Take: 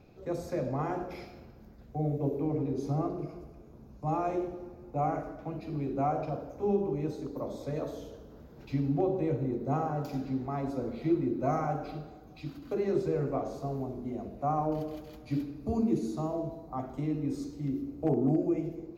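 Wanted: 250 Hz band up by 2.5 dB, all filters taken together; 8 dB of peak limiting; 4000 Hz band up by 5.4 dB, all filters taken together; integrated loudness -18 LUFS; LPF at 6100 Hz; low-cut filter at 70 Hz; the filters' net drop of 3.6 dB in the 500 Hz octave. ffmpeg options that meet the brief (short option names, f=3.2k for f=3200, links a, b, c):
-af "highpass=70,lowpass=6.1k,equalizer=f=250:t=o:g=6,equalizer=f=500:t=o:g=-8,equalizer=f=4k:t=o:g=7.5,volume=16dB,alimiter=limit=-7dB:level=0:latency=1"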